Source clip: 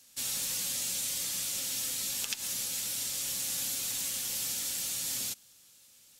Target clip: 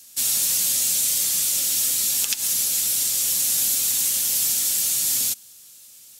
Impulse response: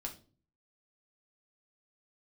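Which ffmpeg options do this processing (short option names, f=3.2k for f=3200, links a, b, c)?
-af "highshelf=f=5.4k:g=10.5,volume=5dB"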